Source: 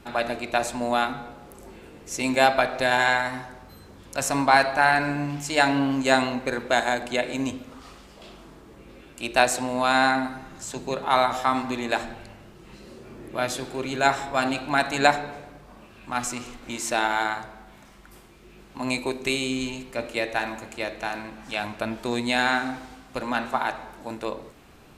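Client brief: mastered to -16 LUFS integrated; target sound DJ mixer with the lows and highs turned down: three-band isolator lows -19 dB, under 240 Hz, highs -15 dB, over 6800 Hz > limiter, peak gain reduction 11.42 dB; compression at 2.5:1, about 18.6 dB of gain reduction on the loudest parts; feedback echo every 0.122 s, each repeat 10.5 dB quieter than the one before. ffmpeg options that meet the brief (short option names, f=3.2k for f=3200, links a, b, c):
-filter_complex "[0:a]acompressor=threshold=-42dB:ratio=2.5,acrossover=split=240 6800:gain=0.112 1 0.178[a][b][c];[a][b][c]amix=inputs=3:normalize=0,aecho=1:1:122|244|366:0.299|0.0896|0.0269,volume=28.5dB,alimiter=limit=-4.5dB:level=0:latency=1"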